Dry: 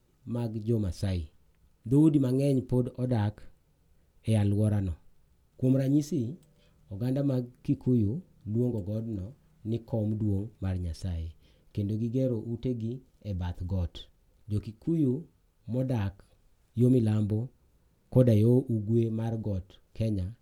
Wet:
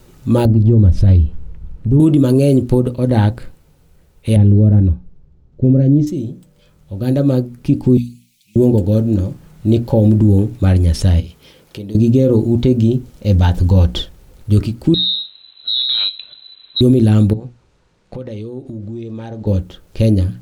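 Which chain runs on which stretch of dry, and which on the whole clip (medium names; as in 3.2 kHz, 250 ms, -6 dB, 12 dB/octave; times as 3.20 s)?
0.45–2.00 s: RIAA curve playback + compression 2:1, threshold -35 dBFS
4.36–6.07 s: low-pass 6.5 kHz 24 dB/octave + tilt shelf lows +10 dB, about 700 Hz
7.97–8.56 s: elliptic high-pass 2.3 kHz + comb 5.5 ms, depth 90%
11.20–11.95 s: high-pass 350 Hz 6 dB/octave + compression 2:1, threshold -55 dBFS
14.94–16.81 s: compression 3:1, threshold -39 dBFS + frequency inversion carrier 4 kHz
17.33–19.47 s: Bessel low-pass 5.4 kHz, order 4 + bass shelf 430 Hz -9.5 dB + compression 10:1, threshold -39 dBFS
whole clip: hum notches 60/120/180/240/300 Hz; gain riding 2 s; loudness maximiser +17.5 dB; trim -2 dB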